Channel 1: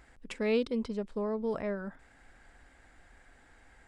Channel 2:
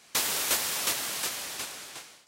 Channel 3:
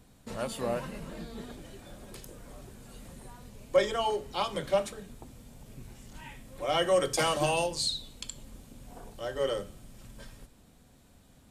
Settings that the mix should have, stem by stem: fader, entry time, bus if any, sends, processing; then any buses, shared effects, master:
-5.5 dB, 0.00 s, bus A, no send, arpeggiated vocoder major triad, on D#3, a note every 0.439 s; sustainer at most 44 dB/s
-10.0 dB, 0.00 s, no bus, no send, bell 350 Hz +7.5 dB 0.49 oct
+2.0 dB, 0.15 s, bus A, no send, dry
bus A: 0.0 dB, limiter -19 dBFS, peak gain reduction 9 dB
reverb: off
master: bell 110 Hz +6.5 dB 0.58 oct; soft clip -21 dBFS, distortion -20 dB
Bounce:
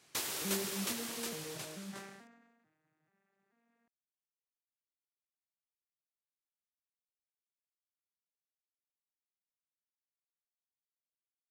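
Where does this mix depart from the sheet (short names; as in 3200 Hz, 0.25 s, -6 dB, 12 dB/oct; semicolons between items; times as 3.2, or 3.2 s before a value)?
stem 1 -5.5 dB -> -11.5 dB; stem 3: muted; master: missing soft clip -21 dBFS, distortion -20 dB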